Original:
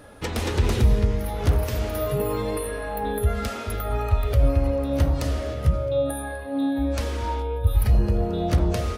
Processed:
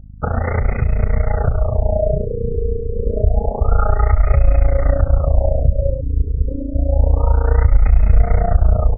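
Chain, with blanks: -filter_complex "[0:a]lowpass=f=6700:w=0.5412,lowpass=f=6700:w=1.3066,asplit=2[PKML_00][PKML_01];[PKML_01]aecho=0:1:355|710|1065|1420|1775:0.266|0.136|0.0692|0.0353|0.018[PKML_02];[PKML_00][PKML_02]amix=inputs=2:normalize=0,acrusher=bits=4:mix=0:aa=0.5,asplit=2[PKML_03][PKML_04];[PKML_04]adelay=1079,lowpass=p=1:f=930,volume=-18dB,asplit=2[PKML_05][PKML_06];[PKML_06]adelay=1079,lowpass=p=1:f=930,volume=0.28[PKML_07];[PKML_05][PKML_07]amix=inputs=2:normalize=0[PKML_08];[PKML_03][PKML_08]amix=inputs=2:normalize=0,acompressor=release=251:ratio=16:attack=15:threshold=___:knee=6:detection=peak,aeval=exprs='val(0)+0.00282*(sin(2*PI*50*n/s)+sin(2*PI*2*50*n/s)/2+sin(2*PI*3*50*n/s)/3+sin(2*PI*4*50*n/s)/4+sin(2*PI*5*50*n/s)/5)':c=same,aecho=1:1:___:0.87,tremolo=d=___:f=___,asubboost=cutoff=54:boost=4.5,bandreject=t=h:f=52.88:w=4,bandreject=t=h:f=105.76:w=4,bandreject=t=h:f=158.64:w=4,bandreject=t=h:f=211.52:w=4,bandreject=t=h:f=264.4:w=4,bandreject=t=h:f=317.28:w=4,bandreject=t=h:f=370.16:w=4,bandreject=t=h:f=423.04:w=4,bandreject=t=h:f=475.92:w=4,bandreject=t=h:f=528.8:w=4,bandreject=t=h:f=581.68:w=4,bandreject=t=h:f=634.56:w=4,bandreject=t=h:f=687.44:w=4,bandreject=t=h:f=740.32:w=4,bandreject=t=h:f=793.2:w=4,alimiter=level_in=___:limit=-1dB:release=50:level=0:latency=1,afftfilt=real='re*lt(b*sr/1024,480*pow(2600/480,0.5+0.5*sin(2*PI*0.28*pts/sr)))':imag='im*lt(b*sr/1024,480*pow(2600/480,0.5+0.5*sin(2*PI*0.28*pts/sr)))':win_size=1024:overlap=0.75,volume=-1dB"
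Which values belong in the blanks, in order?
-30dB, 1.5, 0.919, 29, 17.5dB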